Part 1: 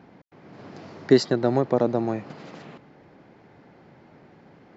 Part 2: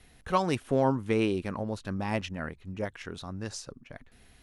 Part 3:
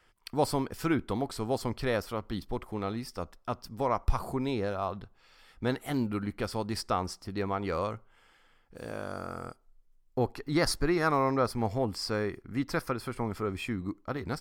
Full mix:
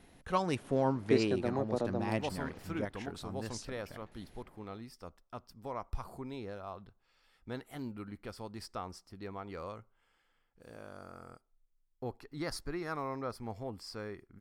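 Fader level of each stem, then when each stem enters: -12.5 dB, -5.0 dB, -11.5 dB; 0.00 s, 0.00 s, 1.85 s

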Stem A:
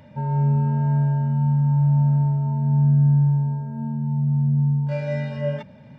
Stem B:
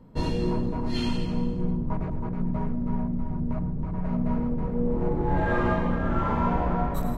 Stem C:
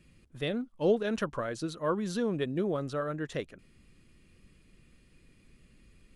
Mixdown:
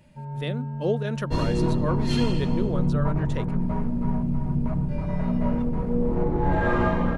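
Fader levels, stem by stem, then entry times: -11.0 dB, +2.0 dB, +0.5 dB; 0.00 s, 1.15 s, 0.00 s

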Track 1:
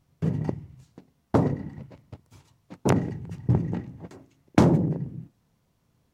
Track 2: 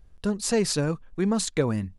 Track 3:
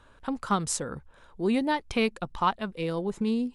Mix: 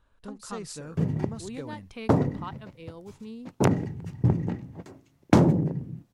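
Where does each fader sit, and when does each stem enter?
0.0 dB, -15.5 dB, -14.0 dB; 0.75 s, 0.00 s, 0.00 s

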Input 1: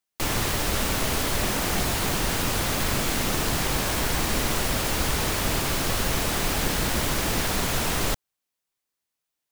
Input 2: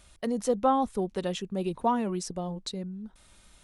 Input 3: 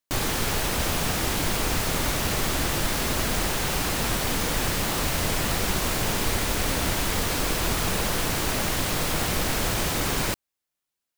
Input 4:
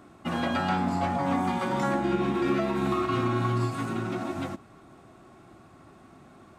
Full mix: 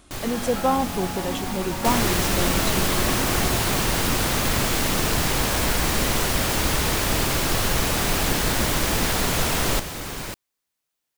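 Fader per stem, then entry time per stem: +2.5 dB, +2.5 dB, -6.5 dB, -5.5 dB; 1.65 s, 0.00 s, 0.00 s, 0.00 s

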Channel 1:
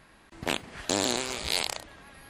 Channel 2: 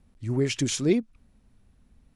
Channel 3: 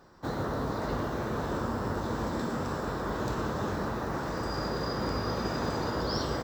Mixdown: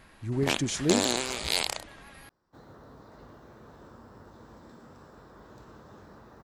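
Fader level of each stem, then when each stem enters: +0.5 dB, -3.5 dB, -19.0 dB; 0.00 s, 0.00 s, 2.30 s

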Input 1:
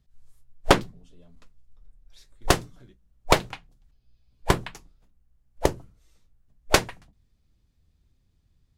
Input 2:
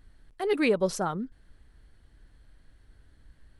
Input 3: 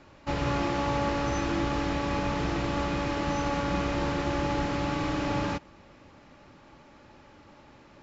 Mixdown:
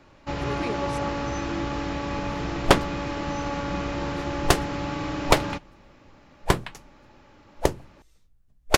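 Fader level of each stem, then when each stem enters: 0.0 dB, -9.5 dB, -0.5 dB; 2.00 s, 0.00 s, 0.00 s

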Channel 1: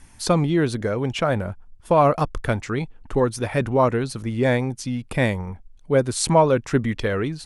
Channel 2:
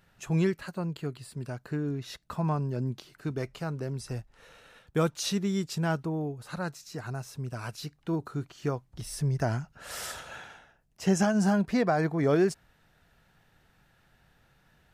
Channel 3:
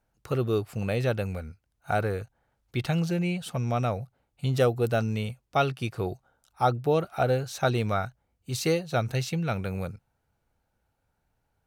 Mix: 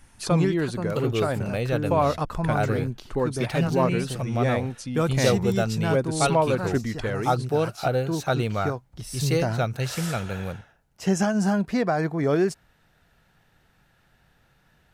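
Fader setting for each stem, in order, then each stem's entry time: -5.5 dB, +2.0 dB, +0.5 dB; 0.00 s, 0.00 s, 0.65 s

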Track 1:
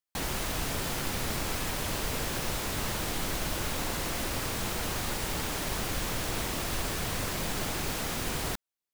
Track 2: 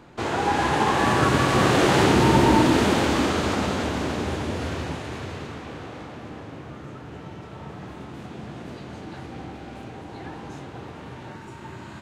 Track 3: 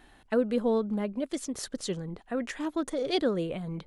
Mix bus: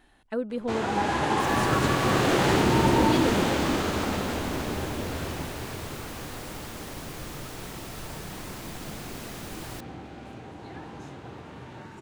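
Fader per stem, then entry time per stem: -8.0 dB, -4.0 dB, -4.0 dB; 1.25 s, 0.50 s, 0.00 s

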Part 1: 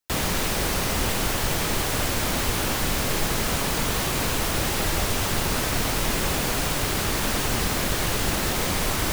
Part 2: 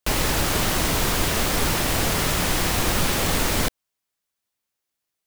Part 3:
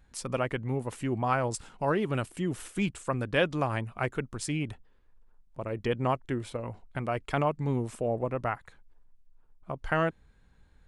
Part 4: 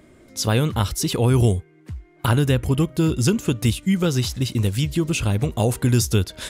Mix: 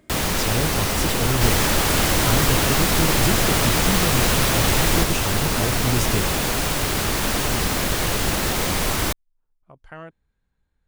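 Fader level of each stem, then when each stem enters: +2.5 dB, +0.5 dB, -12.0 dB, -6.0 dB; 0.00 s, 1.35 s, 0.00 s, 0.00 s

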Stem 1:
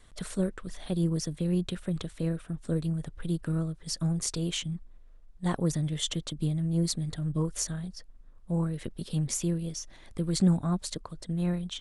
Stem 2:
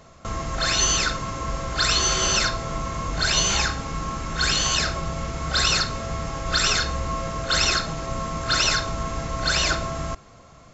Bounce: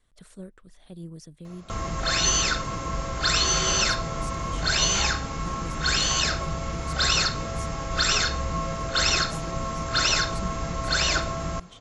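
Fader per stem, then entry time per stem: -12.5 dB, -1.5 dB; 0.00 s, 1.45 s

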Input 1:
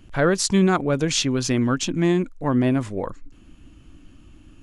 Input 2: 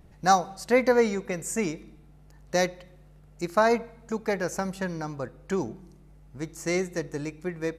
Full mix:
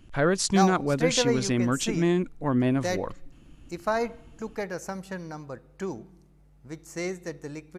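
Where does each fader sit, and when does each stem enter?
-4.0 dB, -5.0 dB; 0.00 s, 0.30 s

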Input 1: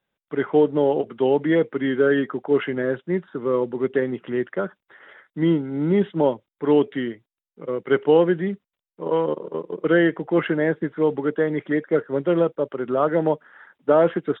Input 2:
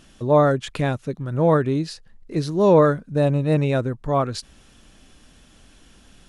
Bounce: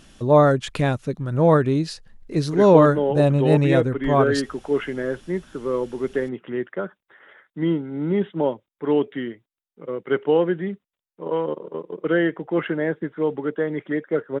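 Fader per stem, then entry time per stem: -2.5 dB, +1.5 dB; 2.20 s, 0.00 s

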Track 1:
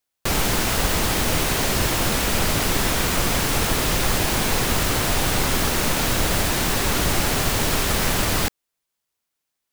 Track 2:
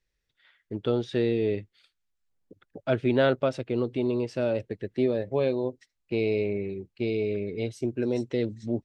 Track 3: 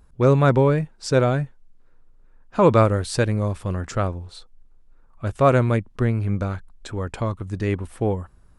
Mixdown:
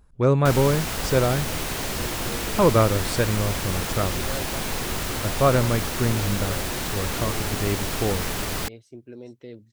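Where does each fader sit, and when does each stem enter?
-7.0 dB, -13.5 dB, -2.5 dB; 0.20 s, 1.10 s, 0.00 s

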